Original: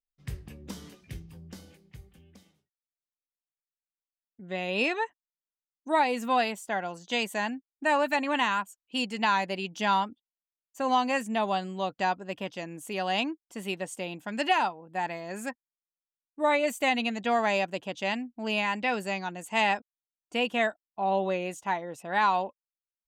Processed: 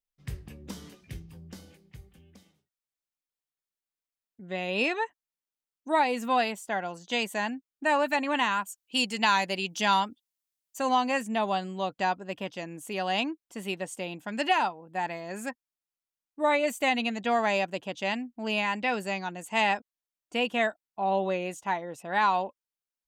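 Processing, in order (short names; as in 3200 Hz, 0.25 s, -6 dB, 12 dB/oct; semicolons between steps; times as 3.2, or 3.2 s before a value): 8.62–10.89 high shelf 3200 Hz +9.5 dB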